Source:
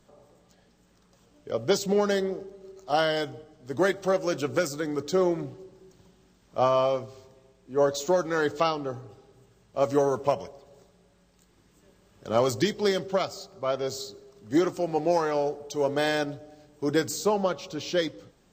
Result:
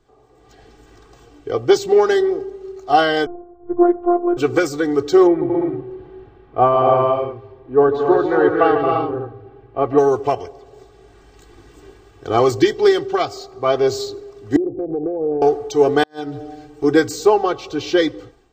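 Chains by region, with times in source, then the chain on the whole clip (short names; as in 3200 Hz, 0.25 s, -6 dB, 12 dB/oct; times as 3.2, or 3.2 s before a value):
3.26–4.37 LPF 1300 Hz 24 dB/oct + robotiser 349 Hz
5.27–9.98 air absorption 480 m + tapped delay 0.145/0.226/0.274/0.343 s -9.5/-7/-4.5/-8 dB
14.56–15.42 steep low-pass 590 Hz + compressor 10:1, threshold -31 dBFS
16.03–16.84 comb 6.4 ms, depth 79% + compressor, threshold -34 dBFS + flipped gate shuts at -23 dBFS, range -32 dB
whole clip: high shelf 4700 Hz -11 dB; comb 2.6 ms, depth 91%; AGC gain up to 16 dB; gain -1 dB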